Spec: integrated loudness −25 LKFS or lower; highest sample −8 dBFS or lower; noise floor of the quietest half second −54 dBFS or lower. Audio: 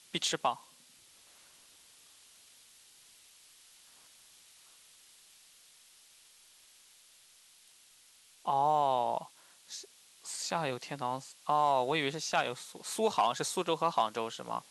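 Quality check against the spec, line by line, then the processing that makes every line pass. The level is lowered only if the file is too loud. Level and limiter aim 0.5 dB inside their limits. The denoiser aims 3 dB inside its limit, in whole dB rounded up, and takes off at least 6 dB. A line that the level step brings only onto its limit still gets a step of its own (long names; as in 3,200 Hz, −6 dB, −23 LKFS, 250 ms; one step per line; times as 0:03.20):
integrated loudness −32.5 LKFS: in spec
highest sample −15.5 dBFS: in spec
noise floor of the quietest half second −61 dBFS: in spec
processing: no processing needed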